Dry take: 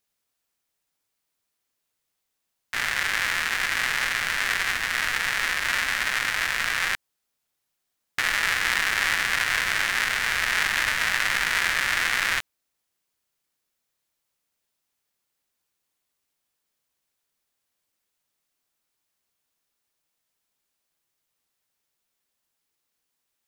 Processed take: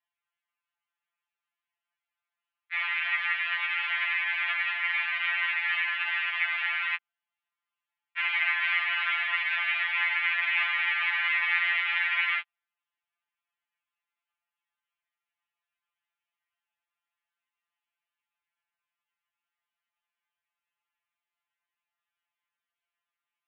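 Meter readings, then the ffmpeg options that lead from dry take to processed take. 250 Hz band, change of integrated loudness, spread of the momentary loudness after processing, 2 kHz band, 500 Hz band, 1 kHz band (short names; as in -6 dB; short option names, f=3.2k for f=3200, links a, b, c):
under -40 dB, -3.0 dB, 3 LU, -2.5 dB, under -10 dB, -5.5 dB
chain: -af "highpass=f=530:t=q:w=0.5412,highpass=f=530:t=q:w=1.307,lowpass=f=2.8k:t=q:w=0.5176,lowpass=f=2.8k:t=q:w=0.7071,lowpass=f=2.8k:t=q:w=1.932,afreqshift=240,afftfilt=real='re*2.83*eq(mod(b,8),0)':imag='im*2.83*eq(mod(b,8),0)':win_size=2048:overlap=0.75"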